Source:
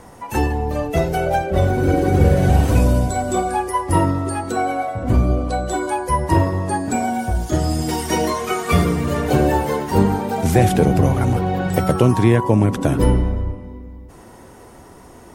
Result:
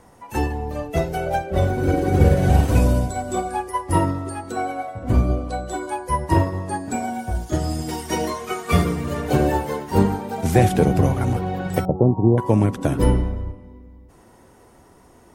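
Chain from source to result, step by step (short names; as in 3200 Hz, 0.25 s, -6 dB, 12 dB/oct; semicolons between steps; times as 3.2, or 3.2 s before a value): 11.85–12.38 elliptic low-pass 850 Hz, stop band 60 dB; upward expander 1.5:1, over -26 dBFS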